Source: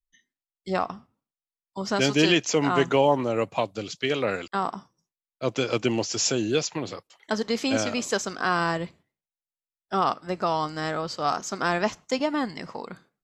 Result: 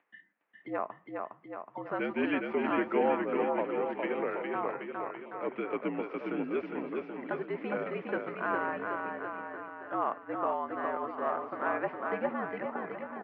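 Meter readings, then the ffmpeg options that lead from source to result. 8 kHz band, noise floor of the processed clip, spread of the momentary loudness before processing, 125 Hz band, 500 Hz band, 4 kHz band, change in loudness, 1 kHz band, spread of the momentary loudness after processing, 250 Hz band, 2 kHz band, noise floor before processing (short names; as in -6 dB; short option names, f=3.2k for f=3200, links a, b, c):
under -40 dB, -61 dBFS, 14 LU, -16.5 dB, -6.0 dB, -23.5 dB, -8.0 dB, -6.0 dB, 9 LU, -7.5 dB, -7.0 dB, under -85 dBFS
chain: -af "acompressor=mode=upward:threshold=-26dB:ratio=2.5,highpass=f=310:t=q:w=0.5412,highpass=f=310:t=q:w=1.307,lowpass=f=2.3k:t=q:w=0.5176,lowpass=f=2.3k:t=q:w=0.7071,lowpass=f=2.3k:t=q:w=1.932,afreqshift=-59,aecho=1:1:410|779|1111|1410|1679:0.631|0.398|0.251|0.158|0.1,volume=-7.5dB"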